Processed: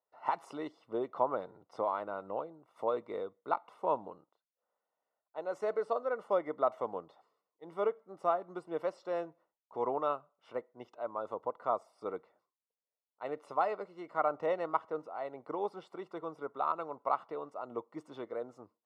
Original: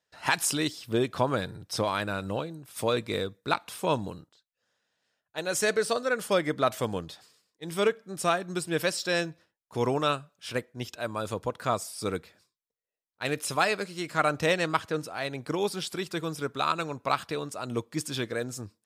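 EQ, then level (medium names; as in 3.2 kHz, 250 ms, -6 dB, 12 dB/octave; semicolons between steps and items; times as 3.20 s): Savitzky-Golay filter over 65 samples; high-pass 750 Hz 12 dB/octave; tilt EQ -2.5 dB/octave; 0.0 dB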